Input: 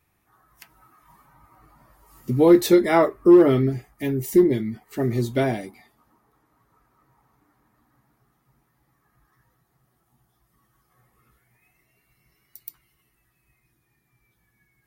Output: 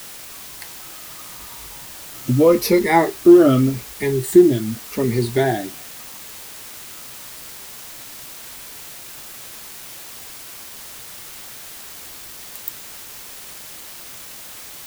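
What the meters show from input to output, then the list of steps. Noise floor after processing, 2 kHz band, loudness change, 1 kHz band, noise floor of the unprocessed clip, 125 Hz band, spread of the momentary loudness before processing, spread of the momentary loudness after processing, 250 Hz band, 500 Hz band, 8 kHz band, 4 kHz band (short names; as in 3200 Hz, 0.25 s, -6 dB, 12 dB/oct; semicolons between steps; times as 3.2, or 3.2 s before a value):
-37 dBFS, +6.0 dB, +2.5 dB, +5.0 dB, -70 dBFS, +3.5 dB, 14 LU, 20 LU, +3.0 dB, +3.0 dB, +11.0 dB, +7.5 dB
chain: moving spectral ripple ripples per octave 0.88, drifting -0.85 Hz, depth 15 dB; in parallel at +1 dB: compressor, threshold -27 dBFS, peak gain reduction 20 dB; on the sum: requantised 6-bit, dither triangular; gain -1 dB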